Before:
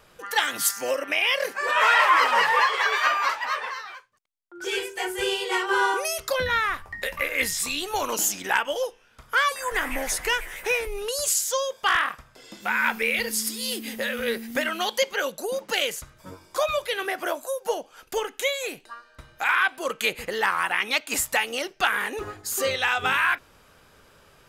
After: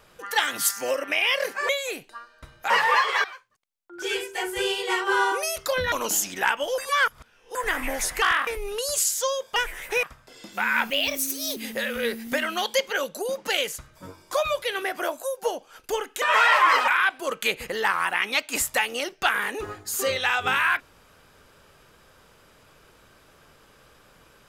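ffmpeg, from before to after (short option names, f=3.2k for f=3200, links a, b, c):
-filter_complex "[0:a]asplit=15[a][b][c][d][e][f][g][h][i][j][k][l][m][n][o];[a]atrim=end=1.692[p];[b]atrim=start=18.448:end=19.462[q];[c]atrim=start=2.348:end=2.892[r];[d]atrim=start=3.858:end=6.542[s];[e]atrim=start=7.998:end=8.862[t];[f]atrim=start=8.858:end=9.632,asetpts=PTS-STARTPTS,areverse[u];[g]atrim=start=9.628:end=10.302[v];[h]atrim=start=11.858:end=12.112[w];[i]atrim=start=10.768:end=11.862[x];[j]atrim=start=10.298:end=10.772[y];[k]atrim=start=12.108:end=12.984[z];[l]atrim=start=12.98:end=13.8,asetpts=PTS-STARTPTS,asetrate=54243,aresample=44100[aa];[m]atrim=start=13.796:end=18.452[ab];[n]atrim=start=1.688:end=2.352[ac];[o]atrim=start=19.458[ad];[p][q]acrossfade=d=0.004:c1=hsin:c2=hsin[ae];[ae][r]acrossfade=d=0.004:c1=hsin:c2=hsin[af];[af][s]acrossfade=d=0.004:c1=hsin:c2=hsin[ag];[ag][t]acrossfade=d=0.004:c1=hsin:c2=hsin[ah];[ah][u]acrossfade=d=0.004:c1=hsin:c2=hsin[ai];[ai][v]acrossfade=d=0.004:c1=hsin:c2=hsin[aj];[aj][w]acrossfade=d=0.004:c1=hsin:c2=hsin[ak];[ak][x]acrossfade=d=0.004:c1=hsin:c2=hsin[al];[al][y]acrossfade=d=0.004:c1=hsin:c2=hsin[am];[am][z]acrossfade=d=0.004:c1=hsin:c2=hsin[an];[an][aa]acrossfade=d=0.004:c1=hsin:c2=hsin[ao];[ao][ab]acrossfade=d=0.004:c1=hsin:c2=hsin[ap];[ap][ac]acrossfade=d=0.004:c1=hsin:c2=hsin[aq];[aq][ad]acrossfade=d=0.004:c1=hsin:c2=hsin"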